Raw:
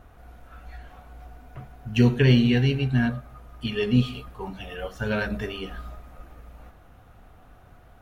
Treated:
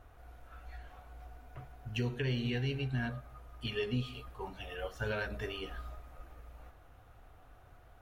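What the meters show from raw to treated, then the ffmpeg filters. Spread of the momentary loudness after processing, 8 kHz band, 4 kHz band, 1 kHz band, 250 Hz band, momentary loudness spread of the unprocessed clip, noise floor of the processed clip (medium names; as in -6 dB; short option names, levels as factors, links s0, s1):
20 LU, no reading, -9.5 dB, -8.0 dB, -16.5 dB, 19 LU, -58 dBFS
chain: -af "equalizer=f=200:t=o:w=0.63:g=-10.5,alimiter=limit=0.112:level=0:latency=1:release=286,volume=0.501"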